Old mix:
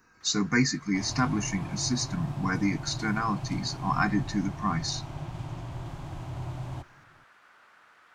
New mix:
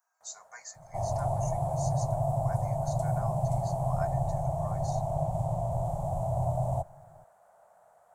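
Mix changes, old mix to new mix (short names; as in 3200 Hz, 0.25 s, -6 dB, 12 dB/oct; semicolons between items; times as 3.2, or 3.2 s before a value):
speech: add ladder high-pass 1000 Hz, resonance 20%; second sound +5.5 dB; master: add EQ curve 180 Hz 0 dB, 300 Hz -21 dB, 660 Hz +14 dB, 1200 Hz -12 dB, 2600 Hz -24 dB, 5100 Hz -16 dB, 7900 Hz +3 dB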